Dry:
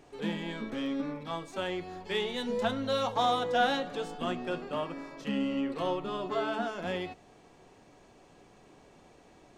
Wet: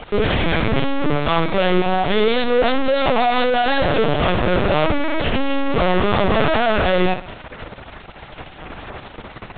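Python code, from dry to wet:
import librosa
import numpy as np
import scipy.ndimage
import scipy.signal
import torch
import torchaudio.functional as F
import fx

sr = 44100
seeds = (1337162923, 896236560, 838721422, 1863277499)

y = fx.fuzz(x, sr, gain_db=55.0, gate_db=-52.0)
y = fx.low_shelf_res(y, sr, hz=220.0, db=-8.5, q=1.5)
y = fx.room_flutter(y, sr, wall_m=10.9, rt60_s=0.36)
y = fx.lpc_vocoder(y, sr, seeds[0], excitation='pitch_kept', order=10)
y = y * librosa.db_to_amplitude(-2.5)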